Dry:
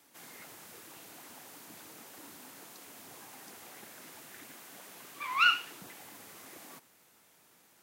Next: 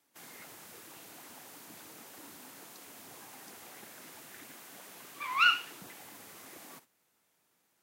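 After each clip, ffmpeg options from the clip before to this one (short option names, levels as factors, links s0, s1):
-af "agate=range=0.282:threshold=0.00158:ratio=16:detection=peak"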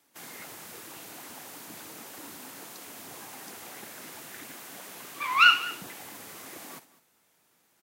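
-af "aecho=1:1:204:0.119,volume=2.11"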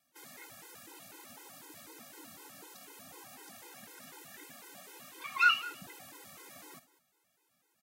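-af "afftfilt=real='re*gt(sin(2*PI*4*pts/sr)*(1-2*mod(floor(b*sr/1024/270),2)),0)':imag='im*gt(sin(2*PI*4*pts/sr)*(1-2*mod(floor(b*sr/1024/270),2)),0)':win_size=1024:overlap=0.75,volume=0.596"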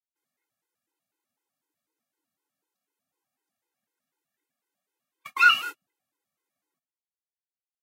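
-af "agate=range=0.00794:threshold=0.01:ratio=16:detection=peak,volume=2.37"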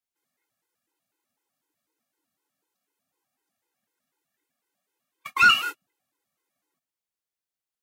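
-af "asoftclip=type=tanh:threshold=0.2,volume=1.58"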